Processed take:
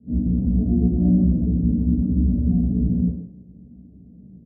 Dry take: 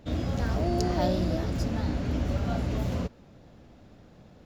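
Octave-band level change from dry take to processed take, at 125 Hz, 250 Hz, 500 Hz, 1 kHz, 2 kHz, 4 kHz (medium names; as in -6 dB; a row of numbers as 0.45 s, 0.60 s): +8.5 dB, +11.5 dB, -5.5 dB, under -15 dB, under -35 dB, under -40 dB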